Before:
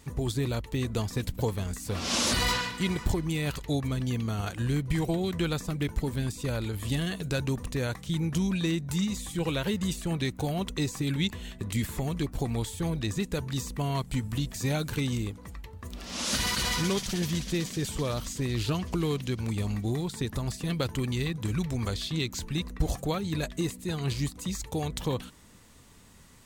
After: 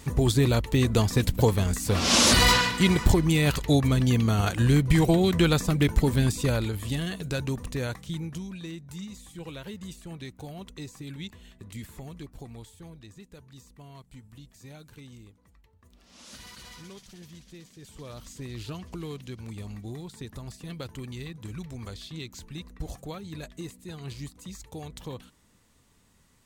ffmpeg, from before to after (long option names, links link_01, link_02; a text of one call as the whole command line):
ffmpeg -i in.wav -af "volume=17dB,afade=type=out:start_time=6.35:duration=0.5:silence=0.398107,afade=type=out:start_time=7.88:duration=0.57:silence=0.316228,afade=type=out:start_time=12.02:duration=1.08:silence=0.421697,afade=type=in:start_time=17.79:duration=0.57:silence=0.334965" out.wav